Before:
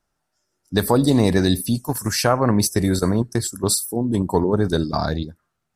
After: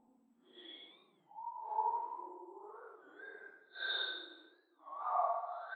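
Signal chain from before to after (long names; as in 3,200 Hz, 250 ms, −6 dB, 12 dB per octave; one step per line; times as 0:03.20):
spectral dynamics exaggerated over time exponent 2
brickwall limiter −18 dBFS, peak gain reduction 10.5 dB
linear-prediction vocoder at 8 kHz pitch kept
output level in coarse steps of 15 dB
high-pass filter 860 Hz 24 dB per octave
dynamic equaliser 2,100 Hz, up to +4 dB, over −55 dBFS, Q 0.94
extreme stretch with random phases 5.5×, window 0.05 s, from 0:04.03
single-tap delay 78 ms −5.5 dB
rectangular room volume 960 cubic metres, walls mixed, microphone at 0.83 metres
wow of a warped record 33 1/3 rpm, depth 160 cents
level +1.5 dB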